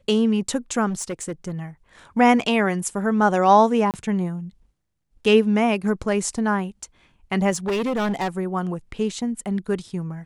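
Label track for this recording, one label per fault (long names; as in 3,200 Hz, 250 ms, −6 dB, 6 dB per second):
0.890000	1.590000	clipping −23 dBFS
3.910000	3.940000	drop-out 28 ms
7.500000	8.280000	clipping −20 dBFS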